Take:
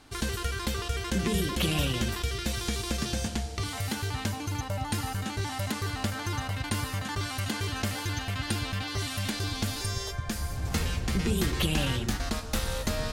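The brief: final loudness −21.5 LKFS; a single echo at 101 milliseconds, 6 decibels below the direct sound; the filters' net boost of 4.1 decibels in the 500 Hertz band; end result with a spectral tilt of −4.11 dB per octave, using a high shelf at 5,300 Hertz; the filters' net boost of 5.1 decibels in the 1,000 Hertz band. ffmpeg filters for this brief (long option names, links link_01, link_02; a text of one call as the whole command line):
ffmpeg -i in.wav -af "equalizer=frequency=500:width_type=o:gain=4,equalizer=frequency=1000:width_type=o:gain=5,highshelf=frequency=5300:gain=6.5,aecho=1:1:101:0.501,volume=6dB" out.wav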